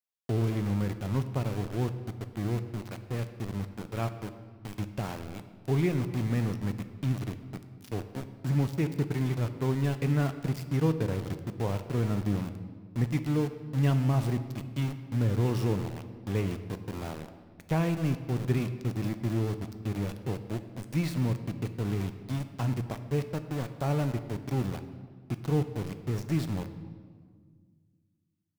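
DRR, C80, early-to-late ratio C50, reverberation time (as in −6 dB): 9.0 dB, 12.5 dB, 11.0 dB, 1.7 s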